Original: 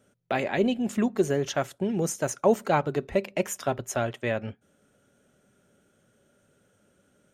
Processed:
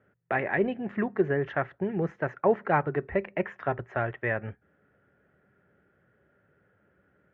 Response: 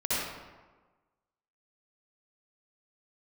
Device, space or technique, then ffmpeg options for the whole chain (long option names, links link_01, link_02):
bass cabinet: -af "highpass=63,equalizer=frequency=66:width_type=q:width=4:gain=8,equalizer=frequency=240:width_type=q:width=4:gain=-8,equalizer=frequency=580:width_type=q:width=4:gain=-4,equalizer=frequency=1800:width_type=q:width=4:gain=8,lowpass=frequency=2100:width=0.5412,lowpass=frequency=2100:width=1.3066"